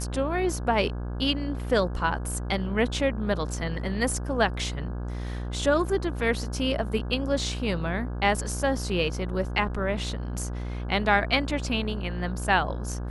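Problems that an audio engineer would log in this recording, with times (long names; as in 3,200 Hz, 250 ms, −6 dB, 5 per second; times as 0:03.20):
mains buzz 60 Hz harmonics 28 −32 dBFS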